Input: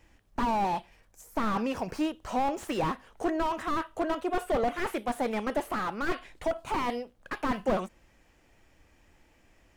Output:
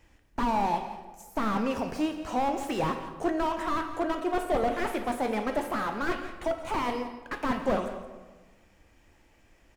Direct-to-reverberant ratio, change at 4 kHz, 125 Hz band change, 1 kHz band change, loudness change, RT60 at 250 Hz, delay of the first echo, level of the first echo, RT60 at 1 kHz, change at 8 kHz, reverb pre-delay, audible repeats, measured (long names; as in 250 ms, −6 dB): 6.0 dB, +1.0 dB, +1.0 dB, +1.0 dB, +1.0 dB, 1.6 s, 170 ms, −13.5 dB, 1.3 s, +0.5 dB, 10 ms, 1